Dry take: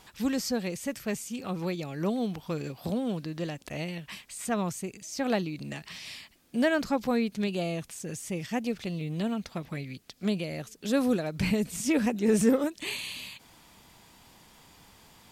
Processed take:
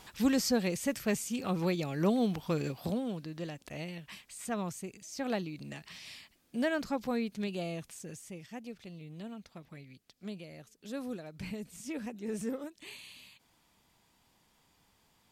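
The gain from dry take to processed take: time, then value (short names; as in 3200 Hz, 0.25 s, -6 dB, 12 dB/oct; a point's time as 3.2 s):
2.7 s +1 dB
3.11 s -6 dB
7.97 s -6 dB
8.44 s -13.5 dB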